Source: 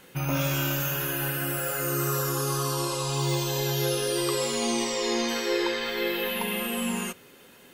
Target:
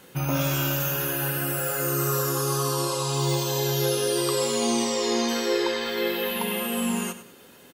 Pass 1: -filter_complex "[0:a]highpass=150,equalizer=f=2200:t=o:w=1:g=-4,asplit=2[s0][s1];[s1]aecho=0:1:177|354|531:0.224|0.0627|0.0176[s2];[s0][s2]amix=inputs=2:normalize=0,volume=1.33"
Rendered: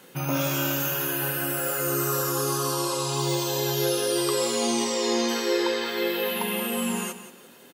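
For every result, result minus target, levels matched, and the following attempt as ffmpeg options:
echo 78 ms late; 125 Hz band -4.0 dB
-filter_complex "[0:a]highpass=150,equalizer=f=2200:t=o:w=1:g=-4,asplit=2[s0][s1];[s1]aecho=0:1:99|198|297:0.224|0.0627|0.0176[s2];[s0][s2]amix=inputs=2:normalize=0,volume=1.33"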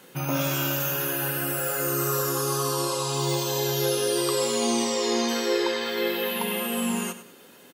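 125 Hz band -3.5 dB
-filter_complex "[0:a]highpass=39,equalizer=f=2200:t=o:w=1:g=-4,asplit=2[s0][s1];[s1]aecho=0:1:99|198|297:0.224|0.0627|0.0176[s2];[s0][s2]amix=inputs=2:normalize=0,volume=1.33"

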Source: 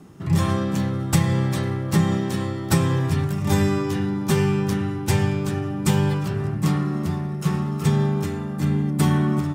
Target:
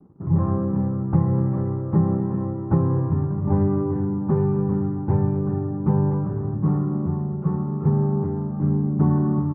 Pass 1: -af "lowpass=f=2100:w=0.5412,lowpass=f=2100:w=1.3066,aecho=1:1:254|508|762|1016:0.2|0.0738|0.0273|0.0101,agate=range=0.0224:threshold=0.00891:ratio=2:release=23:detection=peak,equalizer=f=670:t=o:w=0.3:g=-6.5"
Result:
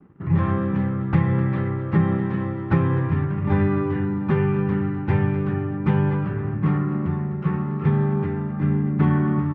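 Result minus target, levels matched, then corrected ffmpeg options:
2 kHz band +17.5 dB
-af "lowpass=f=1000:w=0.5412,lowpass=f=1000:w=1.3066,aecho=1:1:254|508|762|1016:0.2|0.0738|0.0273|0.0101,agate=range=0.0224:threshold=0.00891:ratio=2:release=23:detection=peak,equalizer=f=670:t=o:w=0.3:g=-6.5"

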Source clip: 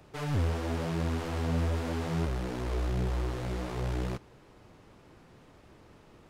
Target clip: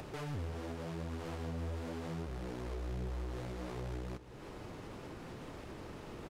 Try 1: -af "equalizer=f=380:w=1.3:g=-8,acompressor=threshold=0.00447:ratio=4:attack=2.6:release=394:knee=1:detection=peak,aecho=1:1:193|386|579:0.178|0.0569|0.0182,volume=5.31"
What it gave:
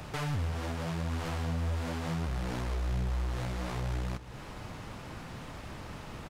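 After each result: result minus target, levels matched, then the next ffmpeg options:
compression: peak gain reduction -9 dB; 500 Hz band -5.0 dB
-af "equalizer=f=380:w=1.3:g=-8,acompressor=threshold=0.00133:ratio=4:attack=2.6:release=394:knee=1:detection=peak,aecho=1:1:193|386|579:0.178|0.0569|0.0182,volume=5.31"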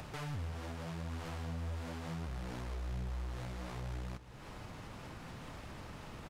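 500 Hz band -4.5 dB
-af "equalizer=f=380:w=1.3:g=2,acompressor=threshold=0.00133:ratio=4:attack=2.6:release=394:knee=1:detection=peak,aecho=1:1:193|386|579:0.178|0.0569|0.0182,volume=5.31"

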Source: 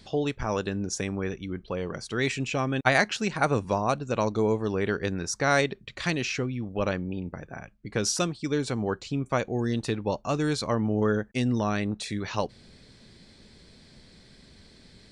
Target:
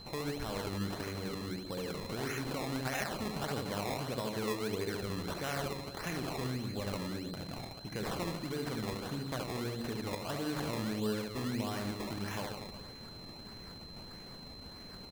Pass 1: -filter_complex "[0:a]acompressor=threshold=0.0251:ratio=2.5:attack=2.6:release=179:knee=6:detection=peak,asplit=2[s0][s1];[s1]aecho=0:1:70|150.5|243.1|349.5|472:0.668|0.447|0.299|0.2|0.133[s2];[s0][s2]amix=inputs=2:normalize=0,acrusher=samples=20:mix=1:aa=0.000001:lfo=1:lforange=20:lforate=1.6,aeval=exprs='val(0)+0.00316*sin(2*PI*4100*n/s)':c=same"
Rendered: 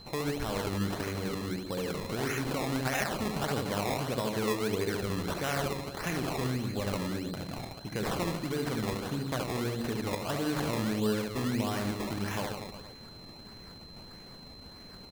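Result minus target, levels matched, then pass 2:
compression: peak gain reduction -5 dB
-filter_complex "[0:a]acompressor=threshold=0.00944:ratio=2.5:attack=2.6:release=179:knee=6:detection=peak,asplit=2[s0][s1];[s1]aecho=0:1:70|150.5|243.1|349.5|472:0.668|0.447|0.299|0.2|0.133[s2];[s0][s2]amix=inputs=2:normalize=0,acrusher=samples=20:mix=1:aa=0.000001:lfo=1:lforange=20:lforate=1.6,aeval=exprs='val(0)+0.00316*sin(2*PI*4100*n/s)':c=same"

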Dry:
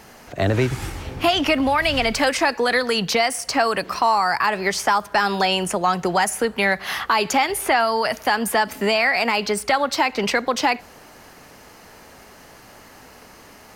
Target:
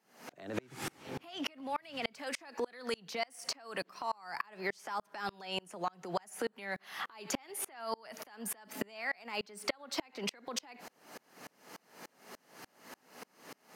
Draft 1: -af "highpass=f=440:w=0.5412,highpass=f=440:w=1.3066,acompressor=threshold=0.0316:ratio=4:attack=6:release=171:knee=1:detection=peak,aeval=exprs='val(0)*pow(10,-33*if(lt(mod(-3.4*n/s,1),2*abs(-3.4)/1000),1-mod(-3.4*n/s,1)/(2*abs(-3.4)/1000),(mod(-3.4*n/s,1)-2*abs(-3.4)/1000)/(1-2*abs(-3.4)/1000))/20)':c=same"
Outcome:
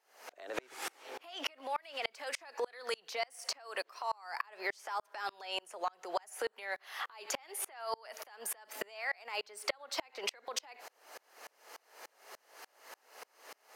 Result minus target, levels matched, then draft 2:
125 Hz band -18.5 dB
-af "highpass=f=160:w=0.5412,highpass=f=160:w=1.3066,acompressor=threshold=0.0316:ratio=4:attack=6:release=171:knee=1:detection=peak,aeval=exprs='val(0)*pow(10,-33*if(lt(mod(-3.4*n/s,1),2*abs(-3.4)/1000),1-mod(-3.4*n/s,1)/(2*abs(-3.4)/1000),(mod(-3.4*n/s,1)-2*abs(-3.4)/1000)/(1-2*abs(-3.4)/1000))/20)':c=same"

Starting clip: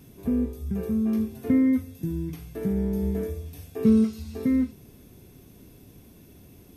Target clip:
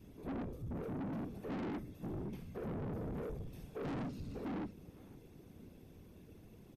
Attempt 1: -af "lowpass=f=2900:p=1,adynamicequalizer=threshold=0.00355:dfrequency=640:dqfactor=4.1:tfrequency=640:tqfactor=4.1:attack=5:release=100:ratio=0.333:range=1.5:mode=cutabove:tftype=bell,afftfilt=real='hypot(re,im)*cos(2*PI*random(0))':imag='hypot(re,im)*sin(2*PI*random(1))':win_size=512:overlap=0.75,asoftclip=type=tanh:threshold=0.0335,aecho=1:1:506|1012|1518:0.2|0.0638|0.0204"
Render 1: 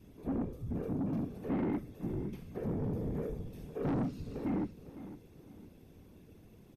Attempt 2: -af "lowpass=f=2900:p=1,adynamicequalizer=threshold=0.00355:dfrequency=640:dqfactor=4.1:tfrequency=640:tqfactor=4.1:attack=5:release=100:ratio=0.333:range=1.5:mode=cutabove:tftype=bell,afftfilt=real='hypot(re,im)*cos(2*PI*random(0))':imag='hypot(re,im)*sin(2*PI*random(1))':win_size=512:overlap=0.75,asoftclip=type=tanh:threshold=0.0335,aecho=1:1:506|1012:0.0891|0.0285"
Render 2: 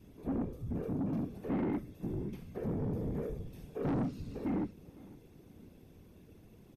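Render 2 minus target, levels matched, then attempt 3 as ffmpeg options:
saturation: distortion -5 dB
-af "lowpass=f=2900:p=1,adynamicequalizer=threshold=0.00355:dfrequency=640:dqfactor=4.1:tfrequency=640:tqfactor=4.1:attack=5:release=100:ratio=0.333:range=1.5:mode=cutabove:tftype=bell,afftfilt=real='hypot(re,im)*cos(2*PI*random(0))':imag='hypot(re,im)*sin(2*PI*random(1))':win_size=512:overlap=0.75,asoftclip=type=tanh:threshold=0.0119,aecho=1:1:506|1012:0.0891|0.0285"

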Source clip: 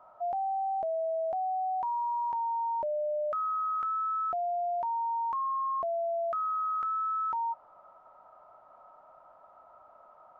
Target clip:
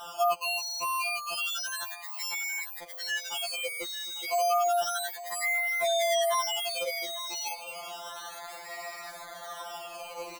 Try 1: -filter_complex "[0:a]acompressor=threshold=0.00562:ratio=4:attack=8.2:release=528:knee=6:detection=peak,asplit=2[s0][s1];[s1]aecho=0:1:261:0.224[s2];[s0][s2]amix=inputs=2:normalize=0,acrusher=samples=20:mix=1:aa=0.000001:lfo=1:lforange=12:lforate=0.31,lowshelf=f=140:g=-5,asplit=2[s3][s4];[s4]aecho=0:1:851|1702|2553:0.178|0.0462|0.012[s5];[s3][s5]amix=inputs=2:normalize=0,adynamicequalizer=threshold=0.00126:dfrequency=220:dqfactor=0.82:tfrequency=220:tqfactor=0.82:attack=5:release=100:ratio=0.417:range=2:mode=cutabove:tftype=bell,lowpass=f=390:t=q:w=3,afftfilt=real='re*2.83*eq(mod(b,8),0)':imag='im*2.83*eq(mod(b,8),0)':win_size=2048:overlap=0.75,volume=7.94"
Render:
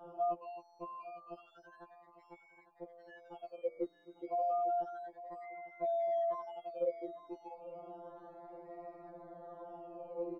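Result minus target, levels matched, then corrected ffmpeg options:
500 Hz band +4.5 dB
-filter_complex "[0:a]acompressor=threshold=0.00562:ratio=4:attack=8.2:release=528:knee=6:detection=peak,asplit=2[s0][s1];[s1]aecho=0:1:261:0.224[s2];[s0][s2]amix=inputs=2:normalize=0,acrusher=samples=20:mix=1:aa=0.000001:lfo=1:lforange=12:lforate=0.31,lowshelf=f=140:g=-5,asplit=2[s3][s4];[s4]aecho=0:1:851|1702|2553:0.178|0.0462|0.012[s5];[s3][s5]amix=inputs=2:normalize=0,adynamicequalizer=threshold=0.00126:dfrequency=220:dqfactor=0.82:tfrequency=220:tqfactor=0.82:attack=5:release=100:ratio=0.417:range=2:mode=cutabove:tftype=bell,afftfilt=real='re*2.83*eq(mod(b,8),0)':imag='im*2.83*eq(mod(b,8),0)':win_size=2048:overlap=0.75,volume=7.94"

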